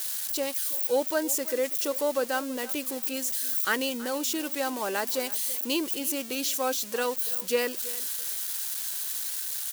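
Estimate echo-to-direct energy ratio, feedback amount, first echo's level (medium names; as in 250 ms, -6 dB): -18.0 dB, 20%, -18.0 dB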